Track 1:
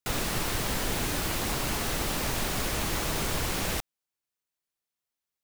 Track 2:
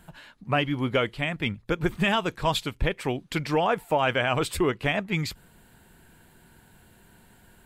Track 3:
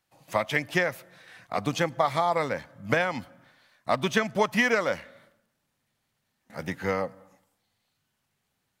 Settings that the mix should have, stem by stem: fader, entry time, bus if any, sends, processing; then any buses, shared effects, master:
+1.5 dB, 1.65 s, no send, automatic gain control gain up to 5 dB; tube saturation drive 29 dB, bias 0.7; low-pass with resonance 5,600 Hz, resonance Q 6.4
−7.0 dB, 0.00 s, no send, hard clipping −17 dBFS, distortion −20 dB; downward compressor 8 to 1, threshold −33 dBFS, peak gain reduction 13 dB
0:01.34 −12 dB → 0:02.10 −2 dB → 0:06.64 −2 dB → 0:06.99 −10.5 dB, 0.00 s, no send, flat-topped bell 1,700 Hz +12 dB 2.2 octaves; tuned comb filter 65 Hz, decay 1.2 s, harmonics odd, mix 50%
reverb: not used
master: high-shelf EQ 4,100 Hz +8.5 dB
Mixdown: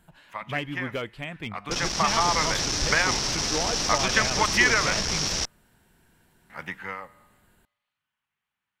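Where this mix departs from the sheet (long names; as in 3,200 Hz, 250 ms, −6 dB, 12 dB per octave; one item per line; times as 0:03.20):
stem 2: missing downward compressor 8 to 1, threshold −33 dBFS, peak gain reduction 13 dB
master: missing high-shelf EQ 4,100 Hz +8.5 dB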